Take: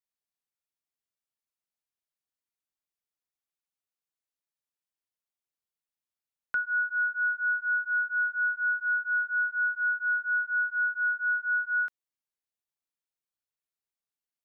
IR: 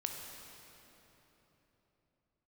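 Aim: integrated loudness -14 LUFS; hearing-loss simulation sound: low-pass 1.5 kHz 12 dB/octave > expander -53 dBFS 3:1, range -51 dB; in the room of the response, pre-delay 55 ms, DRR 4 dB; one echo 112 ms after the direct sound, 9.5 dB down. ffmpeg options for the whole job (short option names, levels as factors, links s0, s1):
-filter_complex "[0:a]aecho=1:1:112:0.335,asplit=2[s0][s1];[1:a]atrim=start_sample=2205,adelay=55[s2];[s1][s2]afir=irnorm=-1:irlink=0,volume=0.596[s3];[s0][s3]amix=inputs=2:normalize=0,lowpass=1500,agate=range=0.00282:threshold=0.00224:ratio=3,volume=10.6"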